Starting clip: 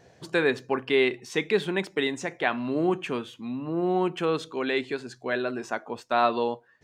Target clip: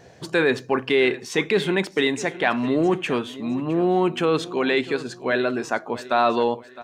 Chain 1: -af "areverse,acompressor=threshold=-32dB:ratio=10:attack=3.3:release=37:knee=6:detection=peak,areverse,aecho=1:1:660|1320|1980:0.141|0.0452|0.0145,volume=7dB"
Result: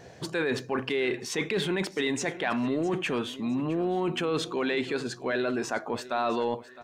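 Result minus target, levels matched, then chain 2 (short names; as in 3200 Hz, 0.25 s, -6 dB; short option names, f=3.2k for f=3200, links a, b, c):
compressor: peak gain reduction +10 dB
-af "areverse,acompressor=threshold=-21dB:ratio=10:attack=3.3:release=37:knee=6:detection=peak,areverse,aecho=1:1:660|1320|1980:0.141|0.0452|0.0145,volume=7dB"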